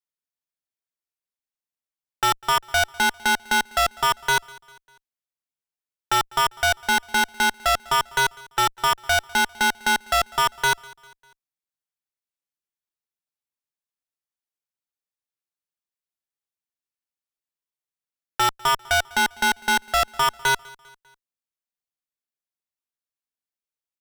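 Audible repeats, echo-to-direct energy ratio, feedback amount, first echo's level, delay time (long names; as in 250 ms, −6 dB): 2, −22.5 dB, 48%, −23.5 dB, 199 ms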